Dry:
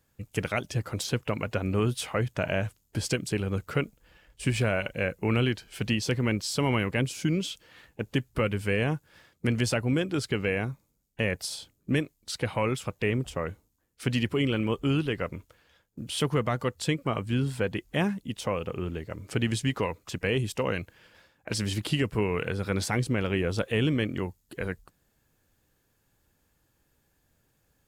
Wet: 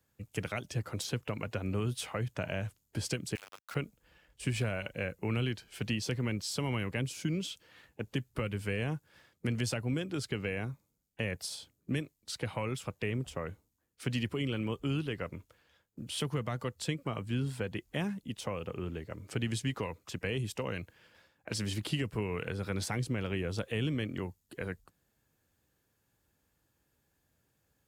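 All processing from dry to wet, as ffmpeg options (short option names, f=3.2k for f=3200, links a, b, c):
-filter_complex "[0:a]asettb=1/sr,asplit=3[a][b][c];[a]atrim=end=3.354[d];[b]atrim=start=3.35:end=3.75,asetpts=PTS-STARTPTS,afade=t=in:d=0.004:c=qsin,afade=t=out:st=0.396:d=0.004:c=qsin,highpass=f=760:w=0.5412,highpass=f=760:w=1.3066,aeval=exprs='val(0)*gte(abs(val(0)),0.0119)':c=same[e];[c]atrim=start=3.746[f];[d][e]acrossfade=d=0.004:c1=hsin:c2=qsin[g];[g][f]acrossfade=d=0.004:c1=qsin:c2=hsin,highpass=49,acrossover=split=180|3000[h][i][j];[i]acompressor=threshold=-28dB:ratio=6[k];[h][k][j]amix=inputs=3:normalize=0,volume=-5dB"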